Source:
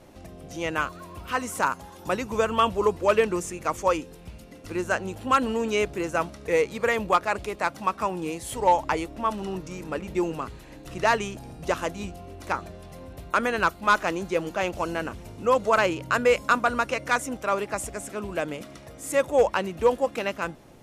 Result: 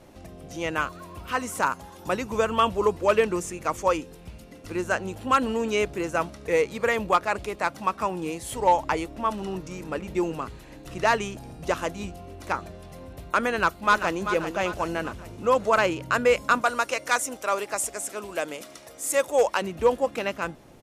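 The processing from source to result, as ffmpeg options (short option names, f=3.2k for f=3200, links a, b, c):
-filter_complex "[0:a]asplit=2[a][b];[b]afade=t=in:st=13.51:d=0.01,afade=t=out:st=14.22:d=0.01,aecho=0:1:390|780|1170|1560|1950:0.354813|0.159666|0.0718497|0.0323324|0.0145496[c];[a][c]amix=inputs=2:normalize=0,asettb=1/sr,asplit=3[d][e][f];[d]atrim=end=16.614[g];[e]atrim=start=16.61:end=19.62,asetpts=PTS-STARTPTS,afade=t=in:d=0.004:c=qsin,afade=t=out:st=3.006:d=0.004:c=qsin,bass=f=250:g=-13,treble=f=4k:g=7[h];[f]atrim=start=19.616[i];[g][h]acrossfade=d=0.004:c1=hsin:c2=qsin[j];[j][i]acrossfade=d=0.004:c1=qsin:c2=hsin"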